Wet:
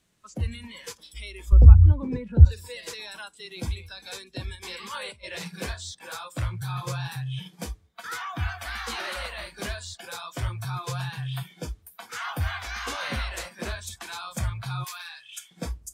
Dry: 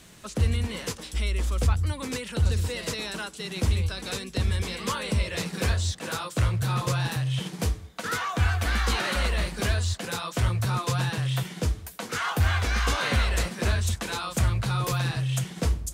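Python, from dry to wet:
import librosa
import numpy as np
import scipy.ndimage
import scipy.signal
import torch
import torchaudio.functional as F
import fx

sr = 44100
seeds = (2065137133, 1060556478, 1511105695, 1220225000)

y = fx.tilt_eq(x, sr, slope=-4.5, at=(1.52, 2.45))
y = fx.over_compress(y, sr, threshold_db=-30.0, ratio=-1.0, at=(4.55, 5.48))
y = fx.highpass(y, sr, hz=1200.0, slope=12, at=(14.84, 15.51))
y = fx.noise_reduce_blind(y, sr, reduce_db=15)
y = y * librosa.db_to_amplitude(-4.5)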